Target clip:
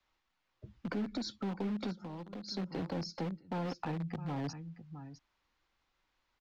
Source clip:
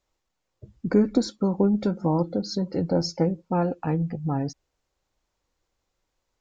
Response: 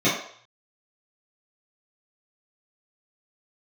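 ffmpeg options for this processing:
-filter_complex "[0:a]acrossover=split=220|3000[s0][s1][s2];[s1]acompressor=threshold=0.00794:ratio=2[s3];[s0][s3][s2]amix=inputs=3:normalize=0,aecho=1:1:658:0.188,acrossover=split=310|770|1800[s4][s5][s6][s7];[s5]acrusher=bits=4:dc=4:mix=0:aa=0.000001[s8];[s4][s8][s6][s7]amix=inputs=4:normalize=0,alimiter=level_in=1.68:limit=0.0631:level=0:latency=1:release=181,volume=0.596,asettb=1/sr,asplit=3[s9][s10][s11];[s9]atrim=end=1.924[s12];[s10]atrim=start=1.92:end=2.48,asetpts=PTS-STARTPTS,afade=t=in:d=0.004:c=qsin,afade=t=out:st=0.556:d=0.004:c=qsin,acompressor=threshold=0.00794:ratio=4[s13];[s11]atrim=start=2.476[s14];[s12][s13]acrossfade=d=0.004:c1=hsin:c2=qsin[s15];[s15][s14]acrossfade=d=0.004:c1=qsin:c2=hsin,acrossover=split=270 4500:gain=0.2 1 0.0794[s16][s17][s18];[s16][s17][s18]amix=inputs=3:normalize=0,asettb=1/sr,asplit=3[s19][s20][s21];[s19]atrim=end=3.044[s22];[s20]atrim=start=3.04:end=3.67,asetpts=PTS-STARTPTS,afade=t=in:d=0.004:c=qsin,afade=t=out:st=0.626:d=0.004:c=qsin,agate=range=0.0224:threshold=0.00562:ratio=3:detection=peak[s23];[s21]atrim=start=3.666[s24];[s22][s23]acrossfade=d=0.004:c1=hsin:c2=qsin[s25];[s25][s24]acrossfade=d=0.004:c1=qsin:c2=hsin,lowshelf=f=150:g=4.5,volume=1.68"

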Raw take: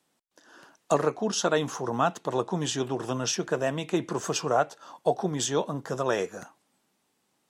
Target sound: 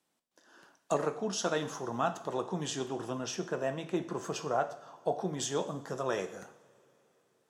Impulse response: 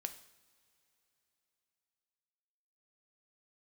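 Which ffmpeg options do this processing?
-filter_complex "[0:a]asettb=1/sr,asplit=3[s0][s1][s2];[s0]atrim=end=3.084[s3];[s1]atrim=start=3.08:end=5.18,asetpts=PTS-STARTPTS,afade=t=in:d=0.004:c=qsin,afade=t=out:st=2.096:d=0.004:c=qsin,equalizer=f=8200:w=0.33:g=-5[s4];[s2]atrim=start=5.176[s5];[s3][s4]acrossfade=d=0.004:c1=hsin:c2=qsin[s6];[s6][s5]acrossfade=d=0.004:c1=qsin:c2=hsin[s7];[1:a]atrim=start_sample=2205[s8];[s7][s8]afir=irnorm=-1:irlink=0,volume=0.631"

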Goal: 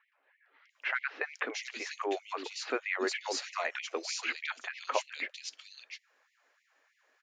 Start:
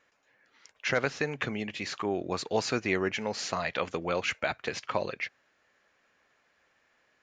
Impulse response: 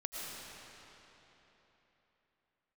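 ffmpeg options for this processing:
-filter_complex "[0:a]acrossover=split=270|3000[s0][s1][s2];[s0]adelay=270[s3];[s2]adelay=700[s4];[s3][s1][s4]amix=inputs=3:normalize=0,afftfilt=real='re*gte(b*sr/1024,230*pow(1900/230,0.5+0.5*sin(2*PI*3.2*pts/sr)))':imag='im*gte(b*sr/1024,230*pow(1900/230,0.5+0.5*sin(2*PI*3.2*pts/sr)))':win_size=1024:overlap=0.75"

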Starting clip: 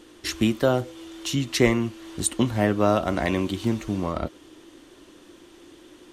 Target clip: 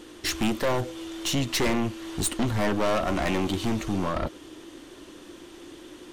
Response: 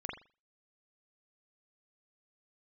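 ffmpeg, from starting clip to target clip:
-af "aeval=exprs='(tanh(22.4*val(0)+0.4)-tanh(0.4))/22.4':c=same,volume=1.88"

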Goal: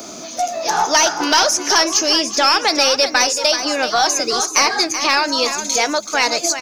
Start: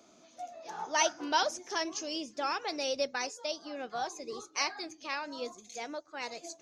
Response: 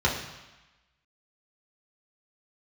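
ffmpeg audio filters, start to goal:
-filter_complex "[0:a]apsyclip=22.4,acrossover=split=890|2400[s0][s1][s2];[s0]acompressor=threshold=0.0794:ratio=4[s3];[s1]acompressor=threshold=0.178:ratio=4[s4];[s2]acompressor=threshold=0.112:ratio=4[s5];[s3][s4][s5]amix=inputs=3:normalize=0,aexciter=amount=2.1:drive=4.7:freq=4600,aeval=exprs='(tanh(1.12*val(0)+0.1)-tanh(0.1))/1.12':c=same,asplit=2[s6][s7];[s7]aecho=0:1:380:0.335[s8];[s6][s8]amix=inputs=2:normalize=0,volume=0.891"

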